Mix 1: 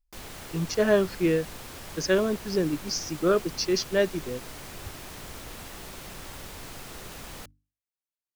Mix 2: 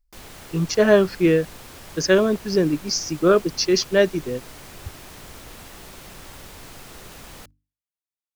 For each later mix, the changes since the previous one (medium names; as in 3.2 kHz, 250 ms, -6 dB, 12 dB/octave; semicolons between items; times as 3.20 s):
speech +6.5 dB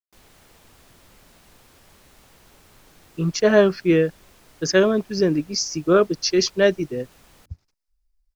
speech: entry +2.65 s; background -11.5 dB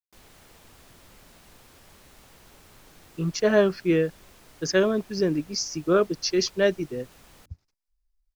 speech -4.5 dB